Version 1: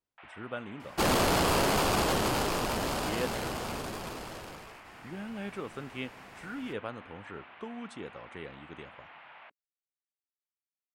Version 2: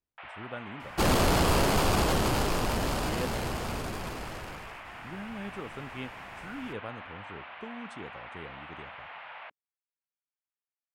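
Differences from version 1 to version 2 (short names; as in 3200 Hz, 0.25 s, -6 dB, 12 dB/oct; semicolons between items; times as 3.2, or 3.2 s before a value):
speech -3.0 dB; first sound +7.0 dB; master: add low shelf 130 Hz +9.5 dB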